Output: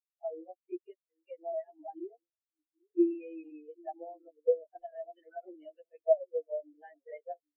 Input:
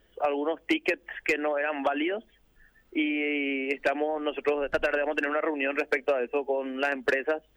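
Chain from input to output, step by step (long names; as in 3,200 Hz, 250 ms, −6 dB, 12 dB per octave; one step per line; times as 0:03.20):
phase-vocoder pitch shift without resampling +2 semitones
echo through a band-pass that steps 791 ms, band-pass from 340 Hz, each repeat 1.4 octaves, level −8 dB
every bin expanded away from the loudest bin 4 to 1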